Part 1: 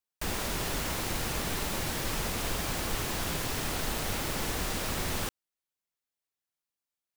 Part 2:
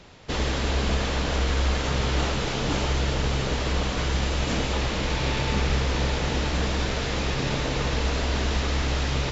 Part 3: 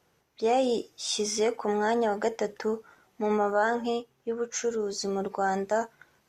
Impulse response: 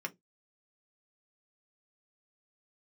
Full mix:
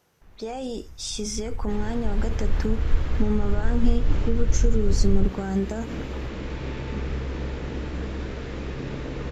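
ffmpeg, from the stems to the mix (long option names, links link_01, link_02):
-filter_complex "[0:a]asubboost=boost=9.5:cutoff=88,adynamicsmooth=sensitivity=5:basefreq=740,volume=-16dB,afade=type=in:start_time=1.19:duration=0.52:silence=0.398107[link_01];[1:a]acrossover=split=330 2300:gain=0.141 1 0.224[link_02][link_03][link_04];[link_02][link_03][link_04]amix=inputs=3:normalize=0,adelay=1400,volume=-6.5dB[link_05];[2:a]alimiter=limit=-21dB:level=0:latency=1,volume=1.5dB[link_06];[link_05][link_06]amix=inputs=2:normalize=0,highshelf=frequency=7100:gain=4.5,acompressor=threshold=-29dB:ratio=4,volume=0dB[link_07];[link_01][link_07]amix=inputs=2:normalize=0,asubboost=boost=9.5:cutoff=240"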